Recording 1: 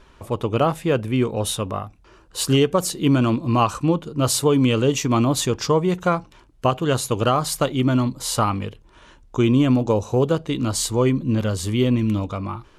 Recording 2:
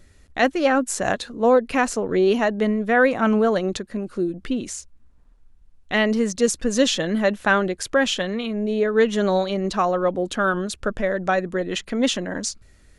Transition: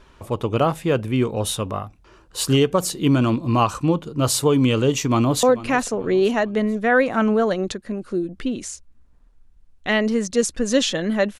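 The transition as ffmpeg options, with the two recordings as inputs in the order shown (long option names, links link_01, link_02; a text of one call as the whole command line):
ffmpeg -i cue0.wav -i cue1.wav -filter_complex "[0:a]apad=whole_dur=11.39,atrim=end=11.39,atrim=end=5.432[link_01];[1:a]atrim=start=1.478:end=7.44[link_02];[link_01][link_02]acrossfade=duration=0.004:curve1=hsin:curve2=hsin,asplit=2[link_03][link_04];[link_04]afade=type=in:start_time=4.85:duration=0.01,afade=type=out:start_time=5.43:duration=0.01,aecho=0:1:440|880|1320|1760:0.149624|0.0673306|0.0302988|0.0136344[link_05];[link_03][link_05]amix=inputs=2:normalize=0" out.wav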